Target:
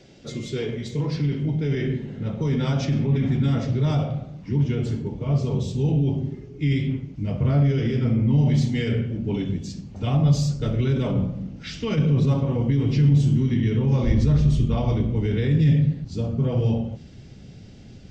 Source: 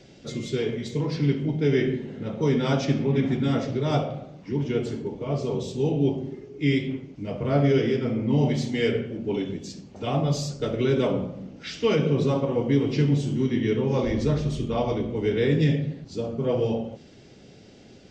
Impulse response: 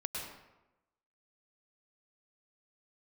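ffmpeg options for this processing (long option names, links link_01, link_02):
-af "alimiter=limit=-18dB:level=0:latency=1:release=17,asubboost=boost=5:cutoff=170"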